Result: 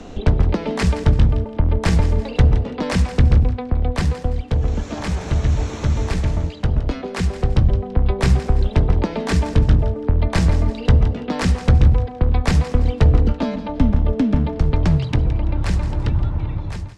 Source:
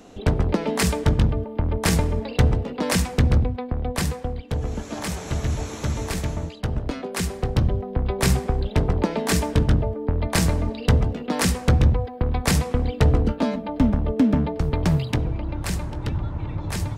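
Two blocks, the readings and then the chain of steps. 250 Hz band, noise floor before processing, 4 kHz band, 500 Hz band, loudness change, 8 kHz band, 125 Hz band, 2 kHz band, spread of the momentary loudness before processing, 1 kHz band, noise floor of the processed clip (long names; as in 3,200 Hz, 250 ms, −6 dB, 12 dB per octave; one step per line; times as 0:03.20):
+1.5 dB, −36 dBFS, −1.0 dB, +1.0 dB, +4.0 dB, −7.0 dB, +5.0 dB, +0.5 dB, 8 LU, +1.0 dB, −32 dBFS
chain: fade-out on the ending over 0.71 s
low-pass filter 5,900 Hz 12 dB per octave
low-shelf EQ 86 Hz +10.5 dB
on a send: feedback echo with a high-pass in the loop 167 ms, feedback 28%, level −14 dB
on the sum: multiband upward and downward compressor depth 40%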